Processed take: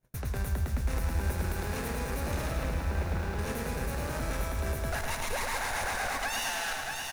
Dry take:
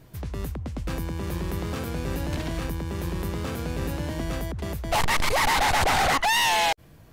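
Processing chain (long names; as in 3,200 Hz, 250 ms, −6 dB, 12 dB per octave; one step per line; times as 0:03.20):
lower of the sound and its delayed copy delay 0.31 ms
noise gate −48 dBFS, range −31 dB
thirty-one-band graphic EQ 100 Hz −9 dB, 160 Hz −8 dB, 315 Hz −10 dB, 1,600 Hz +8 dB, 3,150 Hz −9 dB, 10,000 Hz +5 dB
flanger 0.51 Hz, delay 5.3 ms, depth 9 ms, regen −67%
0:02.51–0:03.39: high-frequency loss of the air 150 metres
single-tap delay 630 ms −19 dB
downward compressor, threshold −34 dBFS, peak gain reduction 11 dB
brickwall limiter −34.5 dBFS, peak gain reduction 8.5 dB
feedback echo at a low word length 108 ms, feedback 80%, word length 10 bits, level −5 dB
level +8.5 dB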